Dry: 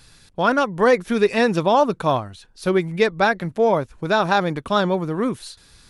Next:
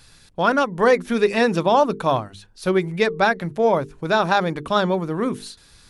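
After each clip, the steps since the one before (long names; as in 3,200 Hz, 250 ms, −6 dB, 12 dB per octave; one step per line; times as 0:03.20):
mains-hum notches 50/100/150/200/250/300/350/400/450 Hz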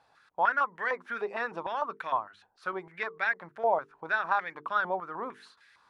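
in parallel at +2.5 dB: downward compressor, threshold −24 dBFS, peak gain reduction 12 dB
on the sum: band-pass on a step sequencer 6.6 Hz 780–1,900 Hz
level −4 dB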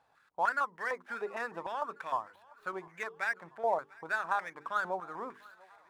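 running median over 9 samples
feedback echo with a high-pass in the loop 695 ms, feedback 57%, high-pass 460 Hz, level −23 dB
level −4 dB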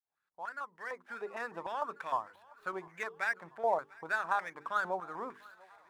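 fade in at the beginning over 1.85 s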